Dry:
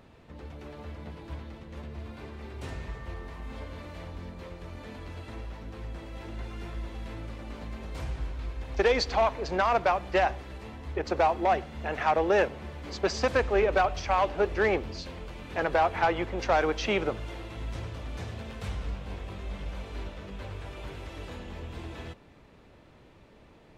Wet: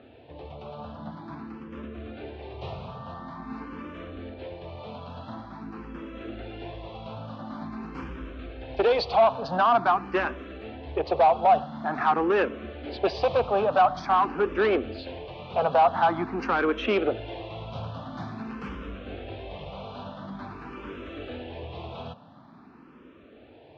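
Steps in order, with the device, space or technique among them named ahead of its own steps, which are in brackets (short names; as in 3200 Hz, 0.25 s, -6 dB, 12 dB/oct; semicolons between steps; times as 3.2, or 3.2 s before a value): barber-pole phaser into a guitar amplifier (endless phaser +0.47 Hz; soft clip -23.5 dBFS, distortion -12 dB; speaker cabinet 110–4000 Hz, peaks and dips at 250 Hz +6 dB, 720 Hz +5 dB, 1200 Hz +4 dB, 2000 Hz -8 dB); gain +6.5 dB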